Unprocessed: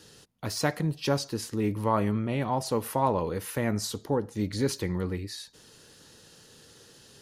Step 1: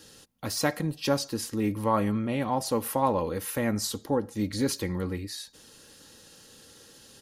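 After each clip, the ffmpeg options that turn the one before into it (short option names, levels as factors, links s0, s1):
-af "highshelf=f=9600:g=6.5,aecho=1:1:3.7:0.34"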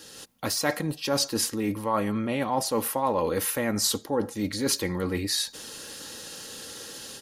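-af "areverse,acompressor=threshold=0.02:ratio=6,areverse,lowshelf=f=210:g=-9,dynaudnorm=f=130:g=3:m=2.24,volume=1.88"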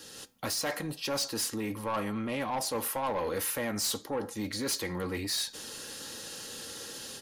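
-filter_complex "[0:a]acrossover=split=530[s0][s1];[s0]alimiter=level_in=1.19:limit=0.0631:level=0:latency=1:release=281,volume=0.841[s2];[s2][s1]amix=inputs=2:normalize=0,flanger=delay=7.7:depth=1.4:regen=-80:speed=1.7:shape=sinusoidal,asoftclip=type=tanh:threshold=0.0355,volume=1.41"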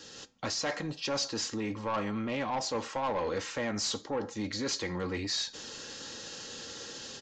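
-af "aresample=16000,aresample=44100"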